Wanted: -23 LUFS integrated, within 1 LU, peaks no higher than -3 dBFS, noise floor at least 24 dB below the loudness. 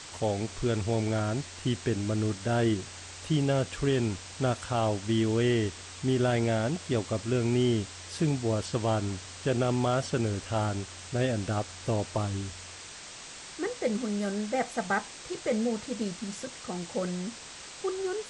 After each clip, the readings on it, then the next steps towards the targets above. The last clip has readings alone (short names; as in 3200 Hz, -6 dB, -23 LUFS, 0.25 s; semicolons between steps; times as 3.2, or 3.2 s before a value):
noise floor -45 dBFS; noise floor target -54 dBFS; loudness -30.0 LUFS; peak -16.0 dBFS; loudness target -23.0 LUFS
-> noise print and reduce 9 dB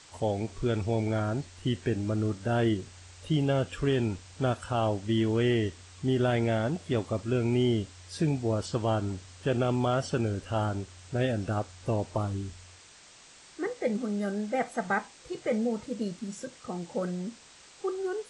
noise floor -54 dBFS; loudness -30.0 LUFS; peak -16.5 dBFS; loudness target -23.0 LUFS
-> gain +7 dB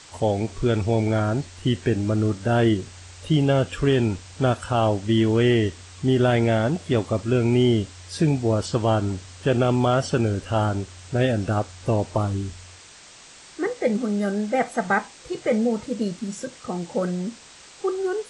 loudness -23.0 LUFS; peak -9.5 dBFS; noise floor -47 dBFS